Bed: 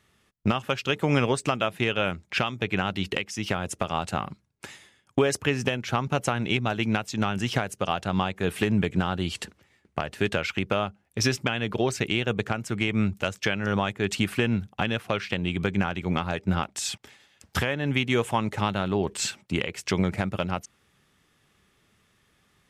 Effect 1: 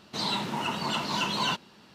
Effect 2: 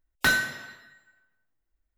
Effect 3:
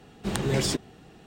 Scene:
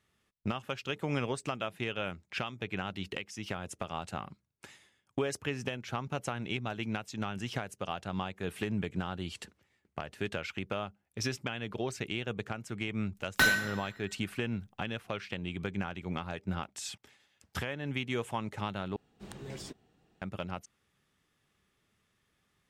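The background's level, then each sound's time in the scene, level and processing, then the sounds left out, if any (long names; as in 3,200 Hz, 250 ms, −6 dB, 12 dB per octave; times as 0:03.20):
bed −10 dB
0:13.15: mix in 2 −2.5 dB
0:18.96: overwrite with 3 −18 dB
not used: 1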